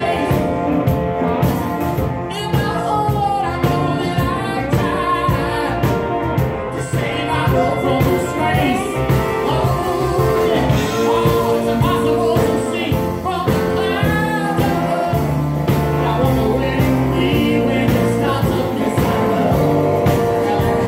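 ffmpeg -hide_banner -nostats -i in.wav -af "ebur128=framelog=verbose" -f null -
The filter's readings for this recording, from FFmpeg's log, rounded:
Integrated loudness:
  I:         -17.0 LUFS
  Threshold: -27.0 LUFS
Loudness range:
  LRA:         2.3 LU
  Threshold: -37.0 LUFS
  LRA low:   -18.3 LUFS
  LRA high:  -16.0 LUFS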